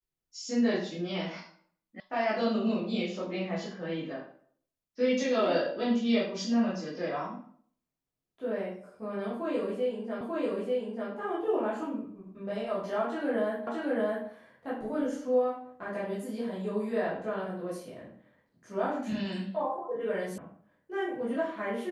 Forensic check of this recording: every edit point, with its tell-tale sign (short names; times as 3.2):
2 sound cut off
10.21 repeat of the last 0.89 s
13.67 repeat of the last 0.62 s
20.38 sound cut off